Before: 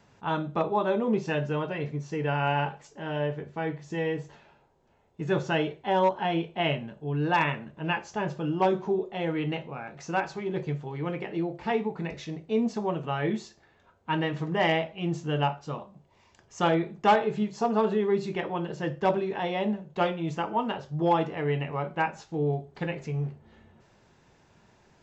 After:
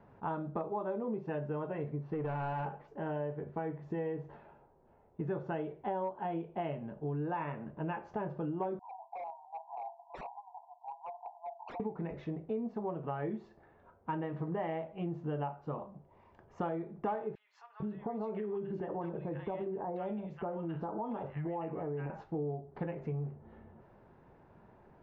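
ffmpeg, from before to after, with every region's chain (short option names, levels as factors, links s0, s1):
-filter_complex "[0:a]asettb=1/sr,asplit=3[s0][s1][s2];[s0]atrim=end=1.984[s3];[s1]atrim=start=1.98:end=2.88,asetpts=PTS-STARTPTS,afade=t=in:d=0.004:c=qsin,afade=t=out:st=0.896:d=0.004:c=qsin,lowpass=f=4700:w=0.5412,lowpass=f=4700:w=1.3066,asoftclip=type=hard:threshold=0.0473[s4];[s2]atrim=start=2.876[s5];[s3][s4]acrossfade=d=0.004:c1=hsin:c2=qsin[s6];[s6][s5]acrossfade=d=0.004:c1=qsin:c2=hsin,asettb=1/sr,asplit=3[s7][s8][s9];[s7]atrim=end=8.794[s10];[s8]atrim=start=8.79:end=11.8,asetpts=PTS-STARTPTS,afade=t=in:d=0.004:c=qsin,afade=t=out:st=3.006:d=0.004:c=qsin,asuperpass=centerf=830:order=20:qfactor=2.3,aeval=exprs='0.0133*(abs(mod(val(0)/0.0133+3,4)-2)-1)':c=same[s11];[s9]atrim=start=11.796[s12];[s10][s11]acrossfade=d=0.004:c1=hsin:c2=qsin[s13];[s13][s12]acrossfade=d=0.004:c1=qsin:c2=hsin,asettb=1/sr,asplit=3[s14][s15][s16];[s14]atrim=end=17.354[s17];[s15]atrim=start=17.35:end=22.1,asetpts=PTS-STARTPTS,afade=t=in:d=0.004:c=qsin,afade=t=out:st=4.746:d=0.004:c=qsin,acompressor=threshold=0.02:ratio=3:attack=3.2:release=140:knee=1:detection=peak,acrossover=split=1400[s18][s19];[s18]adelay=450[s20];[s20][s19]amix=inputs=2:normalize=0,atrim=end_sample=209475[s21];[s16]atrim=start=22.096[s22];[s17][s21]acrossfade=d=0.004:c1=hsin:c2=qsin[s23];[s23][s22]acrossfade=d=0.004:c1=qsin:c2=hsin,lowpass=1100,equalizer=f=110:t=o:w=2.6:g=-3,acompressor=threshold=0.0141:ratio=6,volume=1.41"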